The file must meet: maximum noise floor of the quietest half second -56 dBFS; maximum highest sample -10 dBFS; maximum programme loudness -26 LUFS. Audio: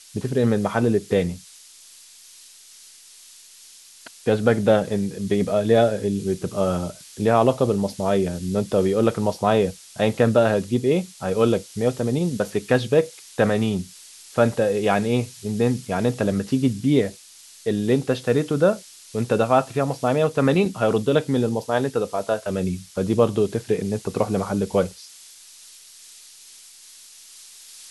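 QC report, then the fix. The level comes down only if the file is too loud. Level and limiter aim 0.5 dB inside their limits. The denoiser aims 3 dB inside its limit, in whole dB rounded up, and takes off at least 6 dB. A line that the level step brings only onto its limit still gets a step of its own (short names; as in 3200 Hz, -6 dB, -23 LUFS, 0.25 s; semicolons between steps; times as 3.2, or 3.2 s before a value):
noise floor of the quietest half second -48 dBFS: fail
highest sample -3.5 dBFS: fail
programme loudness -22.0 LUFS: fail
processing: denoiser 7 dB, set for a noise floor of -48 dBFS; gain -4.5 dB; limiter -10.5 dBFS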